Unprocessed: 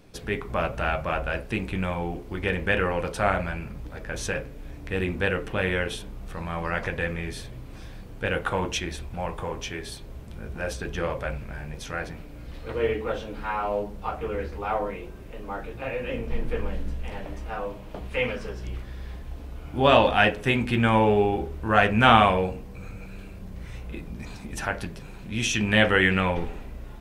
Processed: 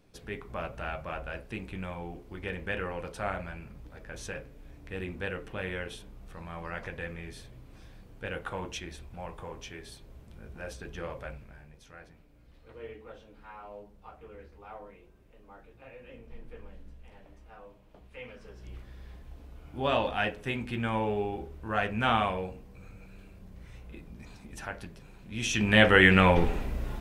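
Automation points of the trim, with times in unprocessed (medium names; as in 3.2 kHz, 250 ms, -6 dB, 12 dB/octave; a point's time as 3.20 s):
11.26 s -10 dB
11.79 s -18.5 dB
18.24 s -18.5 dB
18.76 s -10 dB
25.25 s -10 dB
25.61 s -2 dB
26.49 s +5.5 dB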